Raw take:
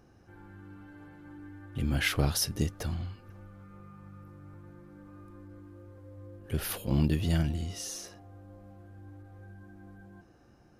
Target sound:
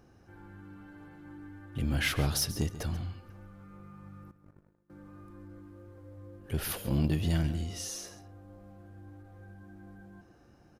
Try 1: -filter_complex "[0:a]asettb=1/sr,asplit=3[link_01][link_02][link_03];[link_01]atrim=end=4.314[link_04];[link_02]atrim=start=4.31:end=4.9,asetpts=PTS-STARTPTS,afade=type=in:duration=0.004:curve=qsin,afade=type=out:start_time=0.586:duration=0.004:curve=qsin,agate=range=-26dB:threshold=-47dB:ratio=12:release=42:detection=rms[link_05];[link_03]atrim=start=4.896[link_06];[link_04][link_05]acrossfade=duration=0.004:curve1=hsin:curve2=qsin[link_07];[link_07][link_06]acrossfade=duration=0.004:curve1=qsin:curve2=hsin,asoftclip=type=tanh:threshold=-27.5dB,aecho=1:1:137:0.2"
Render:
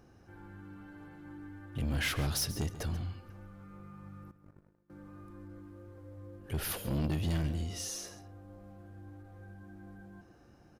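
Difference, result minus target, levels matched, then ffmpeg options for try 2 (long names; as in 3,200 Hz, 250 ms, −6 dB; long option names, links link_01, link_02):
soft clipping: distortion +9 dB
-filter_complex "[0:a]asettb=1/sr,asplit=3[link_01][link_02][link_03];[link_01]atrim=end=4.314[link_04];[link_02]atrim=start=4.31:end=4.9,asetpts=PTS-STARTPTS,afade=type=in:duration=0.004:curve=qsin,afade=type=out:start_time=0.586:duration=0.004:curve=qsin,agate=range=-26dB:threshold=-47dB:ratio=12:release=42:detection=rms[link_05];[link_03]atrim=start=4.896[link_06];[link_04][link_05]acrossfade=duration=0.004:curve1=hsin:curve2=qsin[link_07];[link_07][link_06]acrossfade=duration=0.004:curve1=qsin:curve2=hsin,asoftclip=type=tanh:threshold=-19.5dB,aecho=1:1:137:0.2"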